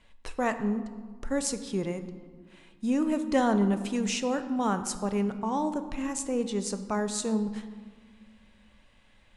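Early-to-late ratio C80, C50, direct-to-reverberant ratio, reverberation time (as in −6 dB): 12.5 dB, 11.0 dB, 9.0 dB, 1.7 s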